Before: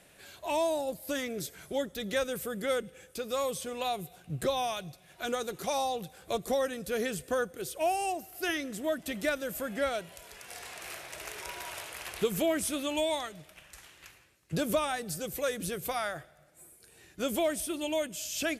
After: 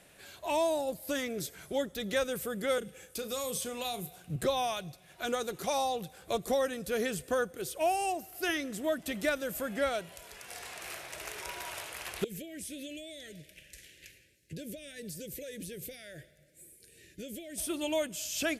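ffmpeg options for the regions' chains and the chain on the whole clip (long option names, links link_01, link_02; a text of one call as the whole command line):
ffmpeg -i in.wav -filter_complex "[0:a]asettb=1/sr,asplit=3[link_01][link_02][link_03];[link_01]atrim=end=2.784[link_04];[link_02]atrim=start=2.78:end=4.36,asetpts=PTS-STARTPTS,afade=type=in:duration=0.004:curve=qsin,afade=type=out:start_time=1.576:duration=0.004:curve=qsin,highshelf=frequency=5700:gain=5.5,asplit=2[link_05][link_06];[link_06]adelay=34,volume=-11.5dB[link_07];[link_05][link_07]amix=inputs=2:normalize=0,atrim=end_sample=69678,acrossover=split=340|3000[link_08][link_09][link_10];[link_09]acompressor=threshold=-36dB:ratio=6:attack=3.2:release=140:knee=2.83:detection=peak[link_11];[link_08][link_11][link_10]amix=inputs=3:normalize=0[link_12];[link_03]atrim=start=4.356[link_13];[link_04][link_12]acrossfade=duration=0.004:curve1=hsin:curve2=qsin[link_14];[link_14][link_13]acrossfade=duration=0.004:curve1=qsin:curve2=hsin,asettb=1/sr,asplit=3[link_15][link_16][link_17];[link_15]atrim=end=12.244[link_18];[link_16]atrim=start=12.24:end=17.58,asetpts=PTS-STARTPTS,afade=type=in:duration=0.004:curve=qsin,afade=type=out:start_time=5.336:duration=0.004:curve=qsin,acompressor=threshold=-38dB:ratio=8:attack=3.2:release=140:knee=1:detection=peak,asuperstop=centerf=1000:order=8:qfactor=0.89[link_19];[link_17]atrim=start=17.576[link_20];[link_18][link_19]acrossfade=duration=0.004:curve1=hsin:curve2=qsin[link_21];[link_21][link_20]acrossfade=duration=0.004:curve1=qsin:curve2=hsin" out.wav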